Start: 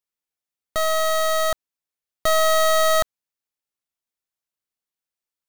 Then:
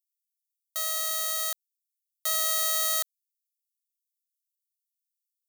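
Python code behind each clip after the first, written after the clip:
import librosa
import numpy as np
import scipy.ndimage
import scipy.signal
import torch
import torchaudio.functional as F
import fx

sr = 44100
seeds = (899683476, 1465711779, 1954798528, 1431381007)

y = np.diff(x, prepend=0.0)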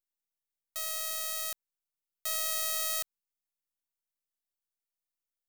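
y = np.where(x < 0.0, 10.0 ** (-12.0 / 20.0) * x, x)
y = y * 10.0 ** (-3.0 / 20.0)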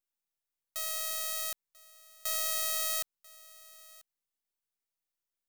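y = x + 10.0 ** (-22.0 / 20.0) * np.pad(x, (int(990 * sr / 1000.0), 0))[:len(x)]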